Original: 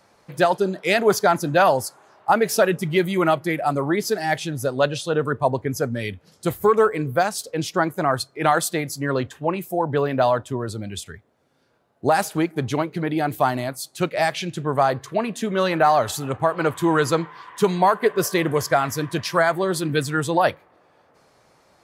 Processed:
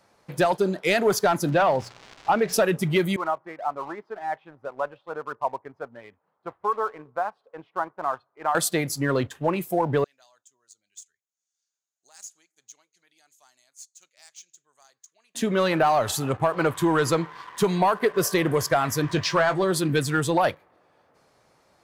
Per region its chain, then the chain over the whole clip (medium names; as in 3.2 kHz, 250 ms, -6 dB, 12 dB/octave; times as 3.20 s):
1.48–2.52 s: de-hum 59.76 Hz, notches 3 + crackle 410 per s -28 dBFS + distance through air 160 m
3.16–8.55 s: band-pass filter 1 kHz, Q 2.4 + distance through air 490 m
10.04–15.35 s: band-pass filter 6.7 kHz, Q 8.7 + tape noise reduction on one side only encoder only
19.02–19.64 s: companding laws mixed up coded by mu + low-pass 7.2 kHz 24 dB/octave + doubling 20 ms -11 dB
whole clip: waveshaping leveller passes 1; compression 2:1, threshold -17 dBFS; trim -2.5 dB